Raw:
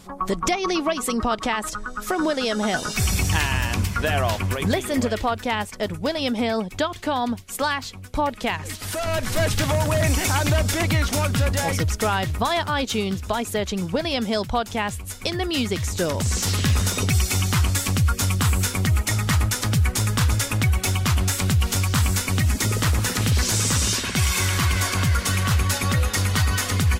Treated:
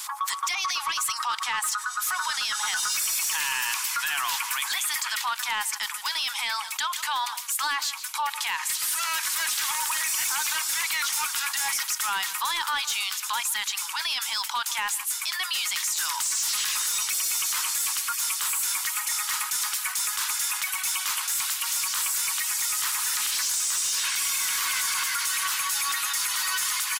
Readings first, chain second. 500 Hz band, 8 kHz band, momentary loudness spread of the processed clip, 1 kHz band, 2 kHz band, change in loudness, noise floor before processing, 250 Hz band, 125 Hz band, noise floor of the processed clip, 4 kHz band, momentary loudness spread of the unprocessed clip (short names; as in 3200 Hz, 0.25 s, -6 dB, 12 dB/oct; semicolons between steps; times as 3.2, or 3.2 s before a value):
-29.5 dB, +3.0 dB, 3 LU, -3.5 dB, -1.5 dB, -2.5 dB, -36 dBFS, under -30 dB, under -40 dB, -34 dBFS, +0.5 dB, 5 LU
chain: steep high-pass 880 Hz 72 dB/oct; high shelf 5400 Hz +11.5 dB; limiter -16.5 dBFS, peak gain reduction 13 dB; soft clip -20.5 dBFS, distortion -18 dB; outdoor echo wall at 26 m, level -20 dB; fast leveller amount 50%